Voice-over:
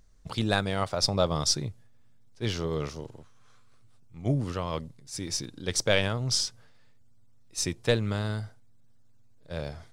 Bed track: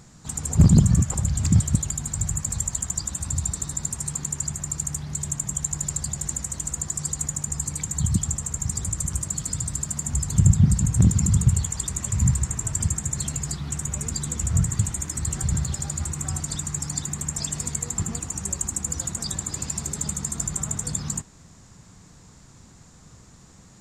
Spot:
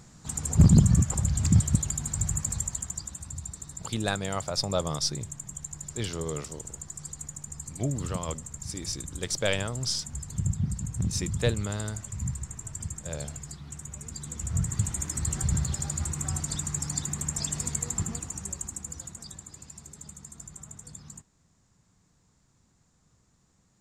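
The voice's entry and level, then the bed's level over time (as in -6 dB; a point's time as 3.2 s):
3.55 s, -3.0 dB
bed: 2.44 s -2.5 dB
3.33 s -12 dB
14.04 s -12 dB
15.01 s -2.5 dB
17.9 s -2.5 dB
19.62 s -17 dB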